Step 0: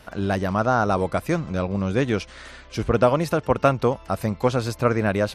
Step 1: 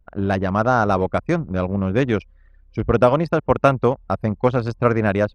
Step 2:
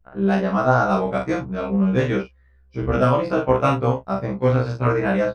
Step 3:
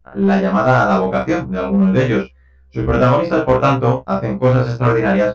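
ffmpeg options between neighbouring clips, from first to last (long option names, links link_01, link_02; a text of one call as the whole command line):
ffmpeg -i in.wav -af "highshelf=frequency=7700:gain=-4,anlmdn=100,volume=3dB" out.wav
ffmpeg -i in.wav -filter_complex "[0:a]asplit=2[link_01][link_02];[link_02]aecho=0:1:41|74:0.631|0.158[link_03];[link_01][link_03]amix=inputs=2:normalize=0,afftfilt=real='re*1.73*eq(mod(b,3),0)':imag='im*1.73*eq(mod(b,3),0)':win_size=2048:overlap=0.75" out.wav
ffmpeg -i in.wav -filter_complex "[0:a]asplit=2[link_01][link_02];[link_02]aeval=exprs='0.188*(abs(mod(val(0)/0.188+3,4)-2)-1)':channel_layout=same,volume=-8.5dB[link_03];[link_01][link_03]amix=inputs=2:normalize=0,aresample=16000,aresample=44100,volume=3dB" out.wav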